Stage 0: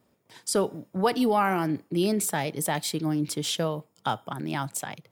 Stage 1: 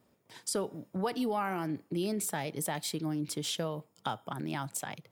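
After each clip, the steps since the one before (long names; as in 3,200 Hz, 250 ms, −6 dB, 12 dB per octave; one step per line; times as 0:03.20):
downward compressor 2 to 1, threshold −33 dBFS, peak gain reduction 8.5 dB
level −1.5 dB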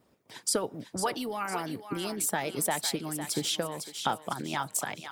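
feedback echo with a high-pass in the loop 504 ms, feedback 46%, high-pass 940 Hz, level −7 dB
harmonic and percussive parts rebalanced harmonic −11 dB
level +6.5 dB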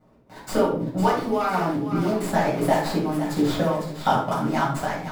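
running median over 15 samples
convolution reverb RT60 0.50 s, pre-delay 5 ms, DRR −7 dB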